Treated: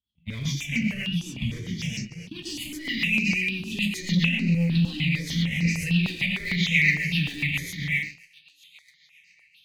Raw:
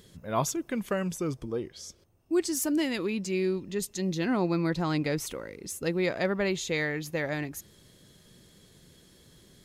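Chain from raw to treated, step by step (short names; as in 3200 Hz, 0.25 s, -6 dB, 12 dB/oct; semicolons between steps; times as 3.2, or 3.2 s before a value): regenerating reverse delay 0.283 s, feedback 69%, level -12 dB; gate -40 dBFS, range -41 dB; in parallel at -6.5 dB: hard clip -31 dBFS, distortion -6 dB; 1.01–1.45 on the sum: level quantiser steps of 20 dB; on a send: thin delay 1 s, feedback 60%, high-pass 4300 Hz, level -21 dB; on the sum: non-linear reverb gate 0.16 s flat, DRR -6.5 dB; rotary speaker horn 7.5 Hz; compressor 5:1, threshold -30 dBFS, peak gain reduction 14.5 dB; EQ curve 110 Hz 0 dB, 170 Hz +7 dB, 320 Hz -17 dB, 530 Hz -27 dB, 860 Hz -21 dB, 1300 Hz -24 dB, 2000 Hz -1 dB, 8200 Hz -27 dB; sample leveller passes 1; resonant high shelf 2000 Hz +12 dB, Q 3; step phaser 6.6 Hz 580–3400 Hz; gain +8 dB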